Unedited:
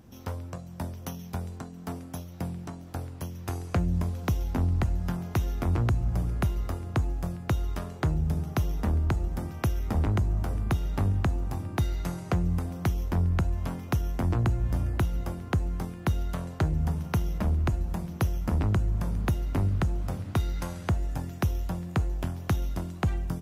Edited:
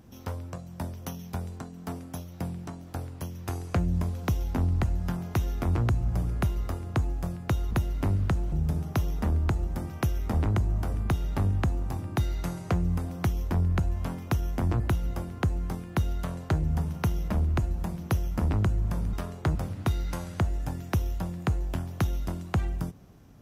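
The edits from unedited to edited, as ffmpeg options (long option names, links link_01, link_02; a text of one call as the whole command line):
ffmpeg -i in.wav -filter_complex "[0:a]asplit=6[link_01][link_02][link_03][link_04][link_05][link_06];[link_01]atrim=end=7.712[link_07];[link_02]atrim=start=19.228:end=20.042[link_08];[link_03]atrim=start=8.128:end=14.412[link_09];[link_04]atrim=start=14.898:end=19.232[link_10];[link_05]atrim=start=7.708:end=8.132[link_11];[link_06]atrim=start=20.038[link_12];[link_07][link_08]acrossfade=duration=0.004:curve1=hsin:curve2=hsin[link_13];[link_13][link_09]acrossfade=duration=0.004:curve1=hsin:curve2=hsin[link_14];[link_14][link_10]acrossfade=duration=0.004:curve1=hsin:curve2=hsin[link_15];[link_15][link_11]acrossfade=duration=0.004:curve1=hsin:curve2=hsin[link_16];[link_16][link_12]acrossfade=duration=0.004:curve1=hsin:curve2=hsin" out.wav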